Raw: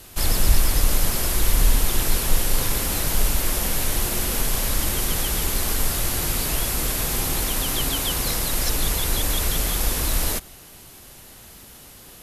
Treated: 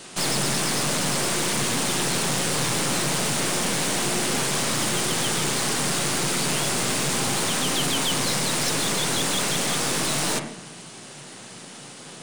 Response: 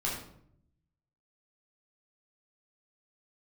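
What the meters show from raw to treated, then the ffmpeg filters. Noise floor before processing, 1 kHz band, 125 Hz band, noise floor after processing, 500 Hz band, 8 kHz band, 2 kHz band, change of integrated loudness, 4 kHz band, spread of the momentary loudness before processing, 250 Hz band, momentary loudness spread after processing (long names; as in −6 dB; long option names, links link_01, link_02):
−45 dBFS, +4.0 dB, −3.0 dB, −42 dBFS, +3.5 dB, +1.5 dB, +4.0 dB, 0.0 dB, +3.0 dB, 2 LU, +4.0 dB, 17 LU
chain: -filter_complex "[0:a]asplit=2[link_01][link_02];[1:a]atrim=start_sample=2205,lowpass=2800,adelay=11[link_03];[link_02][link_03]afir=irnorm=-1:irlink=0,volume=-11.5dB[link_04];[link_01][link_04]amix=inputs=2:normalize=0,afftfilt=real='re*between(b*sr/4096,110,10000)':imag='im*between(b*sr/4096,110,10000)':win_size=4096:overlap=0.75,aeval=exprs='(tanh(28.2*val(0)+0.6)-tanh(0.6))/28.2':channel_layout=same,volume=8.5dB"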